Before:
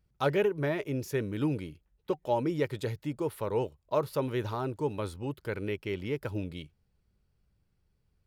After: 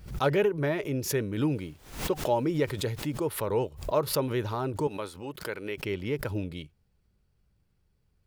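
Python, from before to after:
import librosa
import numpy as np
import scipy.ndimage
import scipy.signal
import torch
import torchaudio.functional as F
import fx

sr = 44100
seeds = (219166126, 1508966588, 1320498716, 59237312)

y = fx.dmg_noise_colour(x, sr, seeds[0], colour='pink', level_db=-65.0, at=(1.54, 3.19), fade=0.02)
y = fx.highpass(y, sr, hz=470.0, slope=6, at=(4.87, 5.82))
y = fx.pre_swell(y, sr, db_per_s=110.0)
y = F.gain(torch.from_numpy(y), 2.0).numpy()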